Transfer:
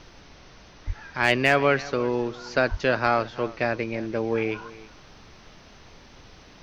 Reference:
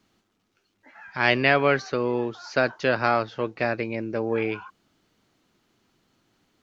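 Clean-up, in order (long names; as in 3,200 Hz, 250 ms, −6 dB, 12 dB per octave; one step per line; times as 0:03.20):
clipped peaks rebuilt −7 dBFS
0:00.86–0:00.98: high-pass filter 140 Hz 24 dB per octave
0:02.70–0:02.82: high-pass filter 140 Hz 24 dB per octave
noise reduction from a noise print 20 dB
echo removal 328 ms −19 dB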